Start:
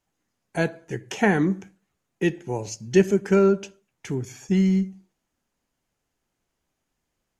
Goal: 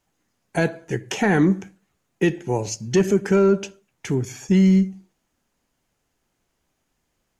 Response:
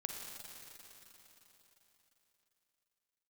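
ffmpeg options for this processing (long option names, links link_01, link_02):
-af "asoftclip=type=tanh:threshold=-7.5dB,alimiter=limit=-14.5dB:level=0:latency=1:release=38,volume=5.5dB"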